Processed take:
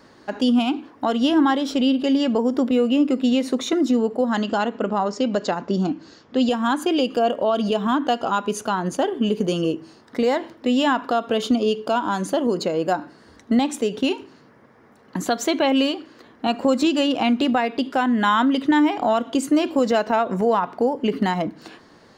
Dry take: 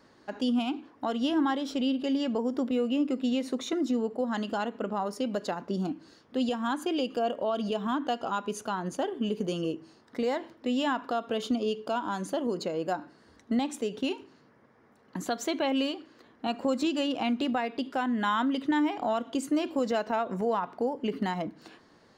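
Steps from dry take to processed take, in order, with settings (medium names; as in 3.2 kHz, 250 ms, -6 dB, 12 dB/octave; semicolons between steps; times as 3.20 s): 4.38–6.49 s: steep low-pass 7.8 kHz 72 dB/octave; trim +9 dB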